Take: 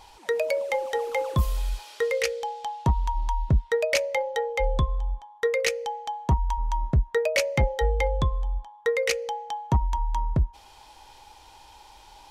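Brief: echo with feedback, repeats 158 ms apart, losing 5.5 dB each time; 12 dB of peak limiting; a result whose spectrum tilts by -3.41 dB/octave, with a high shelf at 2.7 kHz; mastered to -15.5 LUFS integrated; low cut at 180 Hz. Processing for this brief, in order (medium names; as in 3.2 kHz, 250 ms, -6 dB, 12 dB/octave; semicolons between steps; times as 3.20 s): high-pass 180 Hz; treble shelf 2.7 kHz -5 dB; peak limiter -24.5 dBFS; feedback delay 158 ms, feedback 53%, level -5.5 dB; trim +16.5 dB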